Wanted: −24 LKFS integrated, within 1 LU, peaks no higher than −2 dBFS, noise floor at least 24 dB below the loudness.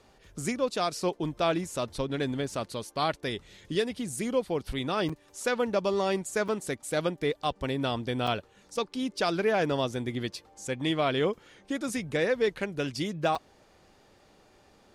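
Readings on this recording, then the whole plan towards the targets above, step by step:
number of dropouts 4; longest dropout 5.2 ms; integrated loudness −30.5 LKFS; sample peak −15.0 dBFS; target loudness −24.0 LKFS
→ repair the gap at 0:05.09/0:06.48/0:08.27/0:13.35, 5.2 ms
level +6.5 dB

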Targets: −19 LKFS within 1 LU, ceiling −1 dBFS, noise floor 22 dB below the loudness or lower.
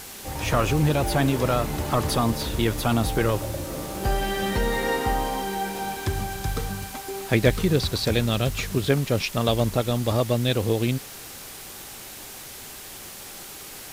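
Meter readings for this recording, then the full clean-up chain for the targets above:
background noise floor −40 dBFS; target noise floor −47 dBFS; integrated loudness −24.5 LKFS; sample peak −5.0 dBFS; target loudness −19.0 LKFS
→ noise reduction from a noise print 7 dB
level +5.5 dB
brickwall limiter −1 dBFS

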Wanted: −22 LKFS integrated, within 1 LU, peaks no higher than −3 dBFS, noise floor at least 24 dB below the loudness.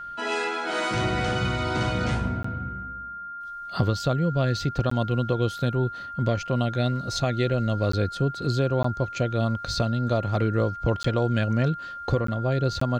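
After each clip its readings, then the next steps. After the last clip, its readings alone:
number of dropouts 7; longest dropout 14 ms; interfering tone 1,400 Hz; level of the tone −34 dBFS; integrated loudness −26.0 LKFS; sample peak −10.5 dBFS; target loudness −22.0 LKFS
→ repair the gap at 0:02.43/0:04.90/0:07.92/0:08.83/0:11.03/0:12.27/0:12.80, 14 ms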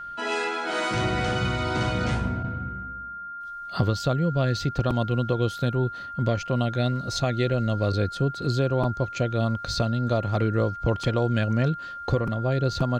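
number of dropouts 0; interfering tone 1,400 Hz; level of the tone −34 dBFS
→ notch filter 1,400 Hz, Q 30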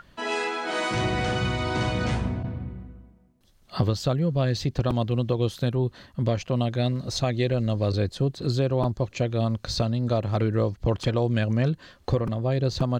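interfering tone none found; integrated loudness −26.0 LKFS; sample peak −11.0 dBFS; target loudness −22.0 LKFS
→ level +4 dB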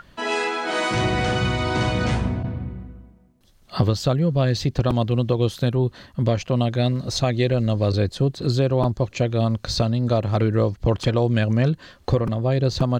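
integrated loudness −22.0 LKFS; sample peak −7.0 dBFS; background noise floor −53 dBFS

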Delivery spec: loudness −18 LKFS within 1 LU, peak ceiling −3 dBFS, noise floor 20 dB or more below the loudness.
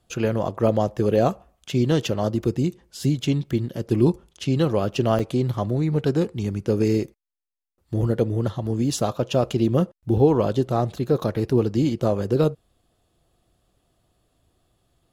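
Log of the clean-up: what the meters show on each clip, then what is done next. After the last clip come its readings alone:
number of dropouts 1; longest dropout 5.6 ms; integrated loudness −23.0 LKFS; sample peak −5.5 dBFS; target loudness −18.0 LKFS
→ repair the gap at 0:05.19, 5.6 ms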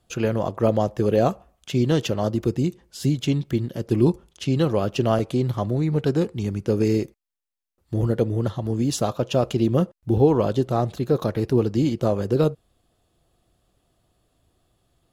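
number of dropouts 0; integrated loudness −23.0 LKFS; sample peak −5.5 dBFS; target loudness −18.0 LKFS
→ level +5 dB
brickwall limiter −3 dBFS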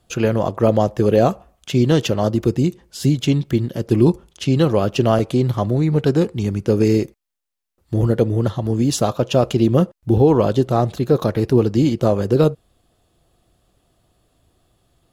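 integrated loudness −18.0 LKFS; sample peak −3.0 dBFS; background noise floor −67 dBFS

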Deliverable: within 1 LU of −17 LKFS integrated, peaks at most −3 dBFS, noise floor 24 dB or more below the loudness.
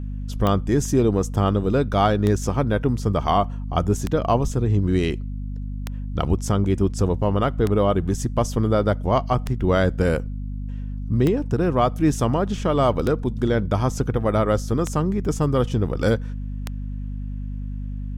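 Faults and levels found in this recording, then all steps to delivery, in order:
number of clicks 10; mains hum 50 Hz; hum harmonics up to 250 Hz; level of the hum −26 dBFS; integrated loudness −22.0 LKFS; sample peak −6.5 dBFS; target loudness −17.0 LKFS
→ click removal
mains-hum notches 50/100/150/200/250 Hz
level +5 dB
brickwall limiter −3 dBFS

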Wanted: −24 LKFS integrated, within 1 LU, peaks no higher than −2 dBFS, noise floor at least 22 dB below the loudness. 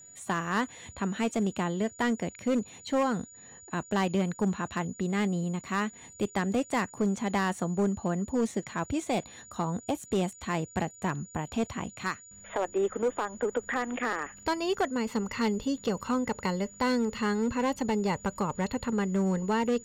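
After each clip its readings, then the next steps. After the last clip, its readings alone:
share of clipped samples 1.2%; peaks flattened at −21.0 dBFS; interfering tone 6,900 Hz; level of the tone −49 dBFS; integrated loudness −30.5 LKFS; sample peak −21.0 dBFS; target loudness −24.0 LKFS
→ clipped peaks rebuilt −21 dBFS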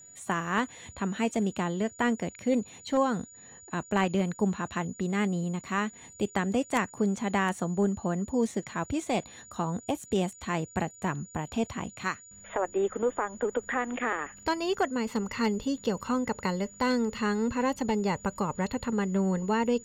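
share of clipped samples 0.0%; interfering tone 6,900 Hz; level of the tone −49 dBFS
→ notch filter 6,900 Hz, Q 30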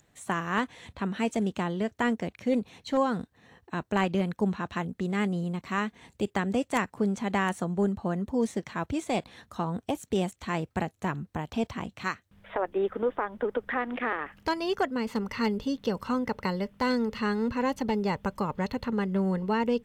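interfering tone none found; integrated loudness −30.0 LKFS; sample peak −12.0 dBFS; target loudness −24.0 LKFS
→ level +6 dB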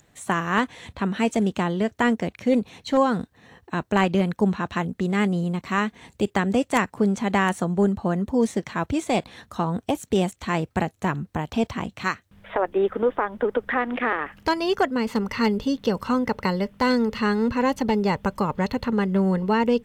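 integrated loudness −24.0 LKFS; sample peak −6.0 dBFS; background noise floor −63 dBFS

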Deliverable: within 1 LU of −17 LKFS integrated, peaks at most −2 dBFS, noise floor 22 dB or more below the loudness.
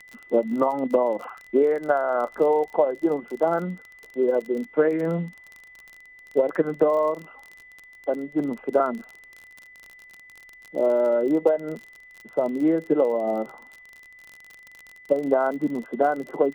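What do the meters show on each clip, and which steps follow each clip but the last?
crackle rate 35 per second; interfering tone 2,000 Hz; level of the tone −46 dBFS; integrated loudness −24.0 LKFS; sample peak −8.0 dBFS; target loudness −17.0 LKFS
→ click removal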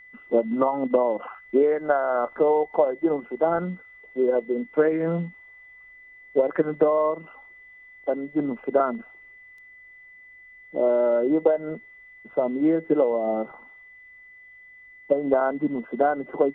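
crackle rate 0.060 per second; interfering tone 2,000 Hz; level of the tone −46 dBFS
→ notch filter 2,000 Hz, Q 30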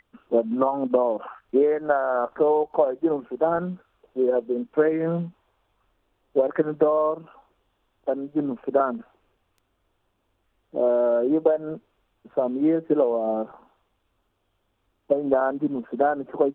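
interfering tone none found; integrated loudness −24.0 LKFS; sample peak −8.0 dBFS; target loudness −17.0 LKFS
→ level +7 dB
brickwall limiter −2 dBFS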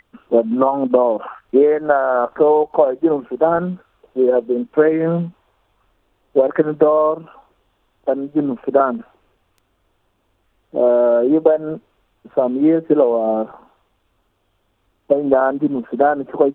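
integrated loudness −17.0 LKFS; sample peak −2.0 dBFS; background noise floor −65 dBFS

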